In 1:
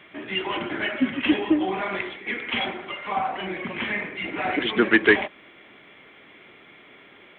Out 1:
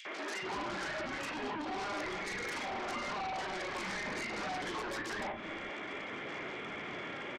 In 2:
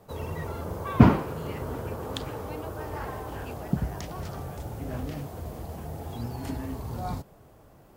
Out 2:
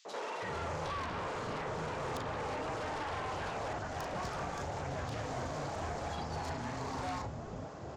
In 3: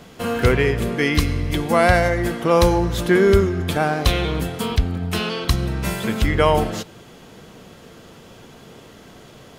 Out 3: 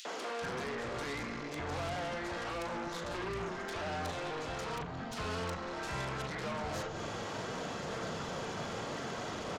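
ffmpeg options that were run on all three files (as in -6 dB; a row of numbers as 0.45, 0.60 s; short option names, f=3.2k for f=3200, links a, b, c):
-filter_complex "[0:a]aphaser=in_gain=1:out_gain=1:delay=3.7:decay=0.24:speed=0.63:type=sinusoidal,aresample=16000,asoftclip=type=tanh:threshold=-19dB,aresample=44100,acompressor=threshold=-33dB:ratio=6,highpass=91,acrossover=split=570|1700[a][b][c];[a]acompressor=threshold=-49dB:ratio=4[d];[b]acompressor=threshold=-43dB:ratio=4[e];[c]acompressor=threshold=-55dB:ratio=4[f];[d][e][f]amix=inputs=3:normalize=0,asplit=2[g][h];[h]adelay=38,volume=-10dB[i];[g][i]amix=inputs=2:normalize=0,asplit=2[j][k];[k]aeval=exprs='0.0376*sin(PI/2*5.62*val(0)/0.0376)':c=same,volume=-10dB[l];[j][l]amix=inputs=2:normalize=0,acrossover=split=290|2900[m][n][o];[n]adelay=50[p];[m]adelay=420[q];[q][p][o]amix=inputs=3:normalize=0"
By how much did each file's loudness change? 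-13.5, -8.0, -19.0 LU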